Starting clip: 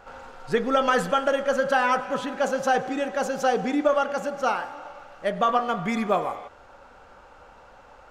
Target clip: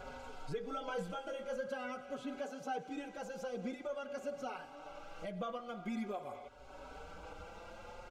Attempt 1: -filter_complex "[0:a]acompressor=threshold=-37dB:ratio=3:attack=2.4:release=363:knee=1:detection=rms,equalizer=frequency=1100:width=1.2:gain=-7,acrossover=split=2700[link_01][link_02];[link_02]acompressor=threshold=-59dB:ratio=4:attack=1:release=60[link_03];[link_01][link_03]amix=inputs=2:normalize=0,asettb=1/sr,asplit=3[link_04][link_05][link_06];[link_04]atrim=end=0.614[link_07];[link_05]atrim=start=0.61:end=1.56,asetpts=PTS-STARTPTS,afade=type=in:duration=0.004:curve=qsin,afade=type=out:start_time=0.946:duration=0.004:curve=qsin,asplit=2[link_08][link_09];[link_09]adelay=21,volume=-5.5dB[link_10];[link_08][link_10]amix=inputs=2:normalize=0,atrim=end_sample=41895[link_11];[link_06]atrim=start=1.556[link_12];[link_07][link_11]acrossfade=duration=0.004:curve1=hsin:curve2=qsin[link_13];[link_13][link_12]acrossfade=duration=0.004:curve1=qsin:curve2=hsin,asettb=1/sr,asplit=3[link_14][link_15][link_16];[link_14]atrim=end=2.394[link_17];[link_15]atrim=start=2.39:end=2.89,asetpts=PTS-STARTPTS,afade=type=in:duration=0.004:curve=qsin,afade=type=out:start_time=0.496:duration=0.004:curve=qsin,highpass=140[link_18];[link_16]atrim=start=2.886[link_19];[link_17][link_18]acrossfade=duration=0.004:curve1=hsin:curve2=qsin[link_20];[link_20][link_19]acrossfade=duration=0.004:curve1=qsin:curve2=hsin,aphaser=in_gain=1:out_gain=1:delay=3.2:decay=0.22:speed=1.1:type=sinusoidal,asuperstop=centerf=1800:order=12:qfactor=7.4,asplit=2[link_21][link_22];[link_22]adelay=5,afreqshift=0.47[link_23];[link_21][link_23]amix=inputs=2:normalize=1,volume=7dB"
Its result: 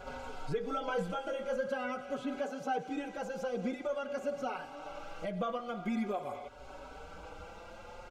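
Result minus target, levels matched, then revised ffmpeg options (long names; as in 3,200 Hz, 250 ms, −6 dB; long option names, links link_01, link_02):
downward compressor: peak gain reduction −5.5 dB
-filter_complex "[0:a]acompressor=threshold=-45.5dB:ratio=3:attack=2.4:release=363:knee=1:detection=rms,equalizer=frequency=1100:width=1.2:gain=-7,acrossover=split=2700[link_01][link_02];[link_02]acompressor=threshold=-59dB:ratio=4:attack=1:release=60[link_03];[link_01][link_03]amix=inputs=2:normalize=0,asettb=1/sr,asplit=3[link_04][link_05][link_06];[link_04]atrim=end=0.614[link_07];[link_05]atrim=start=0.61:end=1.56,asetpts=PTS-STARTPTS,afade=type=in:duration=0.004:curve=qsin,afade=type=out:start_time=0.946:duration=0.004:curve=qsin,asplit=2[link_08][link_09];[link_09]adelay=21,volume=-5.5dB[link_10];[link_08][link_10]amix=inputs=2:normalize=0,atrim=end_sample=41895[link_11];[link_06]atrim=start=1.556[link_12];[link_07][link_11]acrossfade=duration=0.004:curve1=hsin:curve2=qsin[link_13];[link_13][link_12]acrossfade=duration=0.004:curve1=qsin:curve2=hsin,asettb=1/sr,asplit=3[link_14][link_15][link_16];[link_14]atrim=end=2.394[link_17];[link_15]atrim=start=2.39:end=2.89,asetpts=PTS-STARTPTS,afade=type=in:duration=0.004:curve=qsin,afade=type=out:start_time=0.496:duration=0.004:curve=qsin,highpass=140[link_18];[link_16]atrim=start=2.886[link_19];[link_17][link_18]acrossfade=duration=0.004:curve1=hsin:curve2=qsin[link_20];[link_20][link_19]acrossfade=duration=0.004:curve1=qsin:curve2=hsin,aphaser=in_gain=1:out_gain=1:delay=3.2:decay=0.22:speed=1.1:type=sinusoidal,asuperstop=centerf=1800:order=12:qfactor=7.4,asplit=2[link_21][link_22];[link_22]adelay=5,afreqshift=0.47[link_23];[link_21][link_23]amix=inputs=2:normalize=1,volume=7dB"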